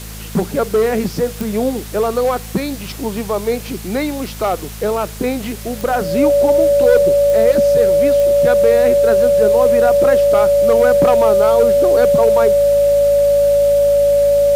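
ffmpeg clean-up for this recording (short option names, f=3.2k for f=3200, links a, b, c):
-af "adeclick=t=4,bandreject=f=53.8:t=h:w=4,bandreject=f=107.6:t=h:w=4,bandreject=f=161.4:t=h:w=4,bandreject=f=215.2:t=h:w=4,bandreject=f=570:w=30,afwtdn=0.02"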